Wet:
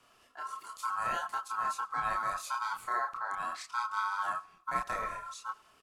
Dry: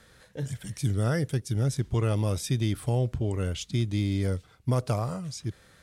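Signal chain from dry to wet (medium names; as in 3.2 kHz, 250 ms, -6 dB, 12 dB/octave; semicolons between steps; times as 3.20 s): ring modulator 1.2 kHz; feedback delay 95 ms, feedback 43%, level -22.5 dB; chorus voices 6, 0.49 Hz, delay 29 ms, depth 4.6 ms; trim -2 dB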